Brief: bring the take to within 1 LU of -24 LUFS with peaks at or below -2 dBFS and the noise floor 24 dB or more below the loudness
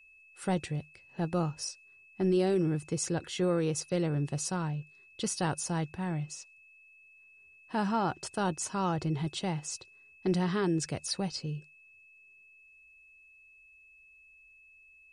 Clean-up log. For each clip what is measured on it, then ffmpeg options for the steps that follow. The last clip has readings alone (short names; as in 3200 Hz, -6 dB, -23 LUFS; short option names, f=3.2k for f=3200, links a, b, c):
steady tone 2600 Hz; tone level -56 dBFS; loudness -32.5 LUFS; peak -19.0 dBFS; loudness target -24.0 LUFS
-> -af "bandreject=f=2.6k:w=30"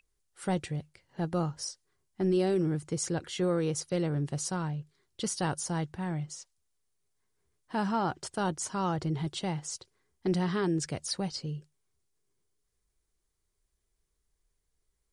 steady tone none; loudness -32.5 LUFS; peak -19.0 dBFS; loudness target -24.0 LUFS
-> -af "volume=8.5dB"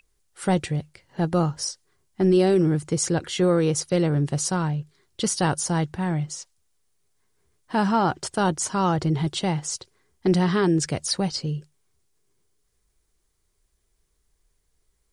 loudness -24.0 LUFS; peak -10.5 dBFS; noise floor -71 dBFS